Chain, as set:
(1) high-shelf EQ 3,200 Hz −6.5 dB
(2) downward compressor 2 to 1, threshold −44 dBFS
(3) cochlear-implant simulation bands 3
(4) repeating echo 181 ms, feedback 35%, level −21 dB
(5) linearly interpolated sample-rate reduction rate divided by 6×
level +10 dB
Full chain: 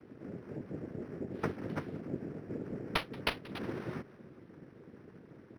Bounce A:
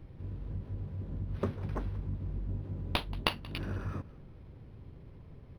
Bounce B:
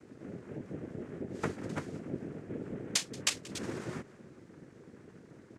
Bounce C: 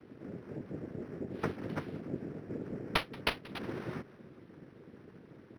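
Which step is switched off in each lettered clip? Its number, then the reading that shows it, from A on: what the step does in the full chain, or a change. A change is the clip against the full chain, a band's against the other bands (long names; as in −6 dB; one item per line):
3, 125 Hz band +7.5 dB
5, 8 kHz band +23.0 dB
1, change in momentary loudness spread +2 LU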